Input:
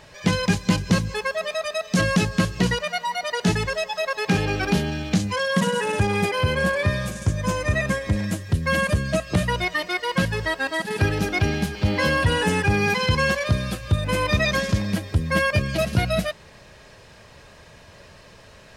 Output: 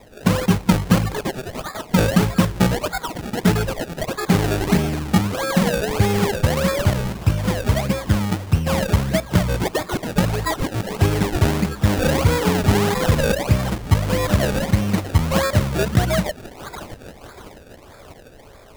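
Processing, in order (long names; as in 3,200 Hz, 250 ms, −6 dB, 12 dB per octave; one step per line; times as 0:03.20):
echo through a band-pass that steps 636 ms, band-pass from 4,200 Hz, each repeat 0.7 octaves, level −1 dB
phaser swept by the level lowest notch 170 Hz, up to 2,600 Hz, full sweep at −16.5 dBFS
sample-and-hold swept by an LFO 29×, swing 100% 1.6 Hz
level +4.5 dB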